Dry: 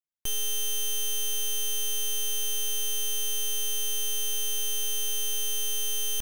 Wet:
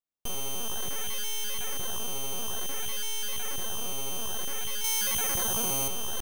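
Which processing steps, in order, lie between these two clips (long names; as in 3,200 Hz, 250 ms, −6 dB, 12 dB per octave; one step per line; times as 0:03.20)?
0:04.84–0:05.88: bass and treble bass −5 dB, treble +8 dB
in parallel at −6 dB: sample-and-hold swept by an LFO 14×, swing 160% 0.56 Hz
on the sum: level −5.5 dB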